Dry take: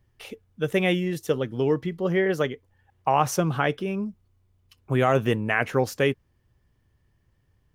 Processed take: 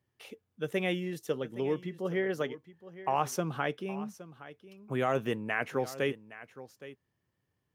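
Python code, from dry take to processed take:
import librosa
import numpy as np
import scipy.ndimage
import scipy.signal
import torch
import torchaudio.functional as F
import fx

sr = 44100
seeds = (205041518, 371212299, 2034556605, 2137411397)

p1 = scipy.signal.sosfilt(scipy.signal.butter(2, 150.0, 'highpass', fs=sr, output='sos'), x)
p2 = p1 + fx.echo_single(p1, sr, ms=817, db=-16.0, dry=0)
y = F.gain(torch.from_numpy(p2), -8.0).numpy()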